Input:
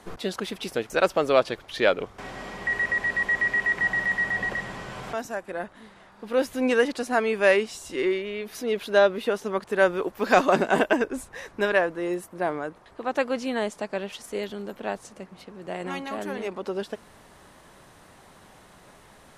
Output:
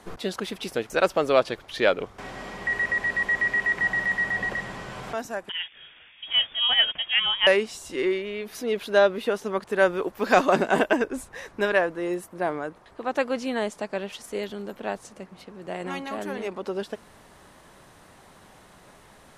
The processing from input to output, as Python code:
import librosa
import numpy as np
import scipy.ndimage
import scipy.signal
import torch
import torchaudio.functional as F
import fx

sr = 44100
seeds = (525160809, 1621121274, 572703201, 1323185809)

y = fx.freq_invert(x, sr, carrier_hz=3500, at=(5.49, 7.47))